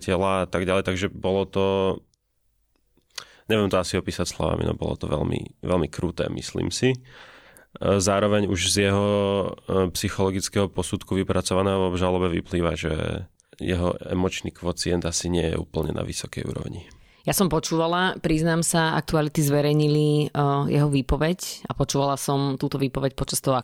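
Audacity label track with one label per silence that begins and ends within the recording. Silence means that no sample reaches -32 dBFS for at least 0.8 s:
1.980000	3.180000	silence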